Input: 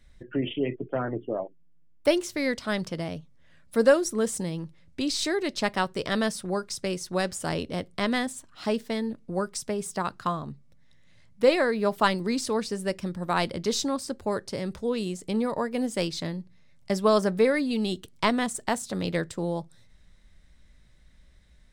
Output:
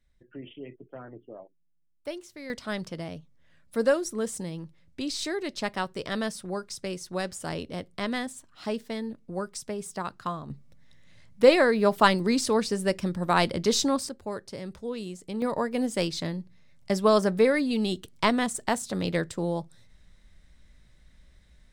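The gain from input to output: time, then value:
-14 dB
from 2.5 s -4 dB
from 10.5 s +3 dB
from 14.09 s -6 dB
from 15.42 s +0.5 dB

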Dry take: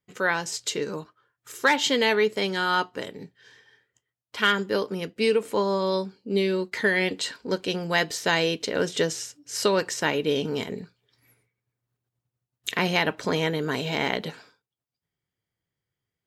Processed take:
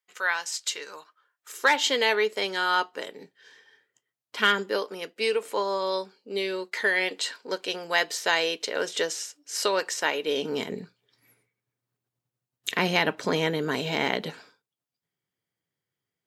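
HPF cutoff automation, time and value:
1 s 960 Hz
1.71 s 420 Hz
2.97 s 420 Hz
4.38 s 170 Hz
4.84 s 490 Hz
10.24 s 490 Hz
10.7 s 150 Hz

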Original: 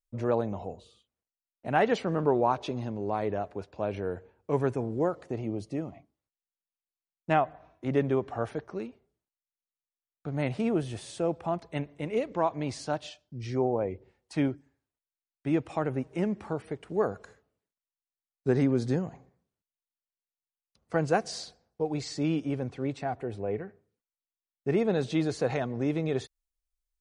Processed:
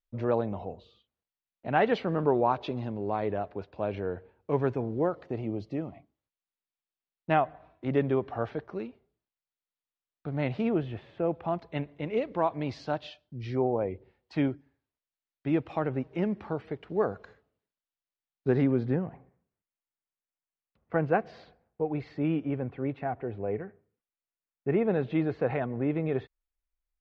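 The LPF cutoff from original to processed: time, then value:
LPF 24 dB/oct
10.61 s 4300 Hz
11.13 s 2200 Hz
11.53 s 4300 Hz
18.48 s 4300 Hz
18.94 s 2600 Hz

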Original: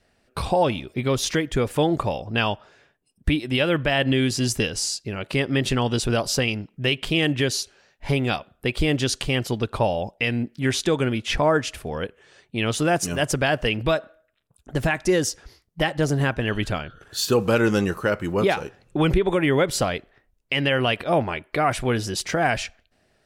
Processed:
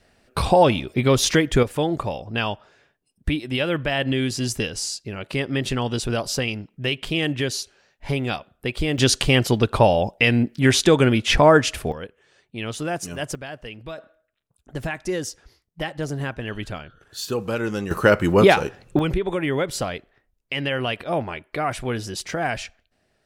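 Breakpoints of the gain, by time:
+5 dB
from 1.63 s -2 dB
from 8.98 s +6 dB
from 11.92 s -6 dB
from 13.35 s -14 dB
from 13.98 s -6 dB
from 17.91 s +7 dB
from 18.99 s -3.5 dB

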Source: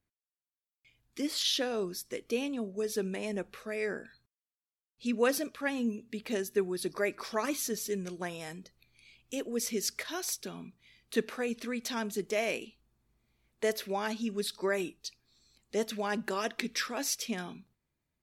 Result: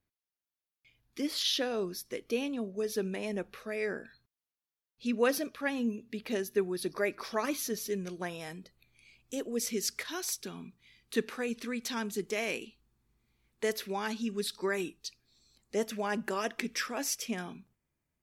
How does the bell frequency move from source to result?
bell -7.5 dB 0.37 oct
8.48 s 7800 Hz
9.43 s 2400 Hz
9.77 s 620 Hz
15.06 s 620 Hz
15.78 s 4000 Hz

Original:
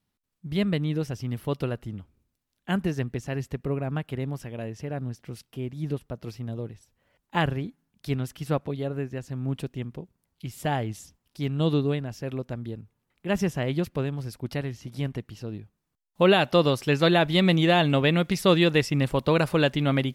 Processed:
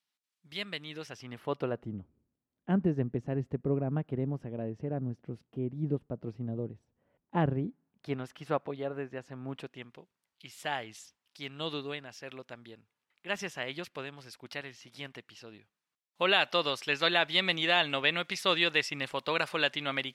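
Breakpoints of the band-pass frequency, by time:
band-pass, Q 0.59
0.84 s 3900 Hz
1.62 s 850 Hz
1.98 s 290 Hz
7.66 s 290 Hz
8.25 s 1100 Hz
9.48 s 1100 Hz
9.97 s 2700 Hz

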